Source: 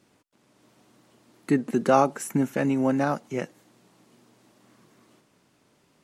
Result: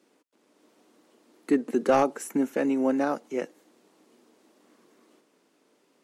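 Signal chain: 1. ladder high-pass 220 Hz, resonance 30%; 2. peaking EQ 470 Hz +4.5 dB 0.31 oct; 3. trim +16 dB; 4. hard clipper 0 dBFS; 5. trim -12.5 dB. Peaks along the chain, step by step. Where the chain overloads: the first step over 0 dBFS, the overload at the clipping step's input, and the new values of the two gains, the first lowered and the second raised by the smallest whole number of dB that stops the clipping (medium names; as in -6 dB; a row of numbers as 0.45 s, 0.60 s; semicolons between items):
-11.5 dBFS, -11.0 dBFS, +5.0 dBFS, 0.0 dBFS, -12.5 dBFS; step 3, 5.0 dB; step 3 +11 dB, step 5 -7.5 dB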